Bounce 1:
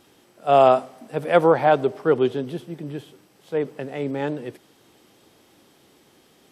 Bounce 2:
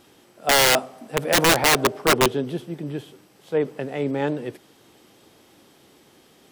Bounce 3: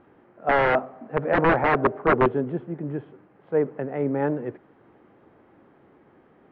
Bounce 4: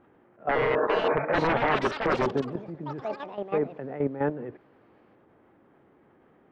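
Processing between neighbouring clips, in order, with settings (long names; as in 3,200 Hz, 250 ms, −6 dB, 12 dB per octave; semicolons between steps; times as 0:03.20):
wrap-around overflow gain 12.5 dB; level +2 dB
low-pass filter 1,800 Hz 24 dB per octave
healed spectral selection 0:00.57–0:01.12, 210–1,800 Hz after; output level in coarse steps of 12 dB; delay with pitch and tempo change per echo 548 ms, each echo +6 semitones, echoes 3, each echo −6 dB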